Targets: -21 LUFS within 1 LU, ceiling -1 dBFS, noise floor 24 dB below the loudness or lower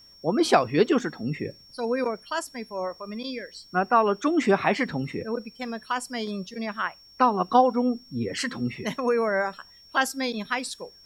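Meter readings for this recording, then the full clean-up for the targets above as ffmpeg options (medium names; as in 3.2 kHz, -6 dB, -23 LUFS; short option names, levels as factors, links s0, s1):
steady tone 5.5 kHz; tone level -50 dBFS; loudness -26.0 LUFS; peak level -4.5 dBFS; loudness target -21.0 LUFS
-> -af "bandreject=f=5500:w=30"
-af "volume=1.78,alimiter=limit=0.891:level=0:latency=1"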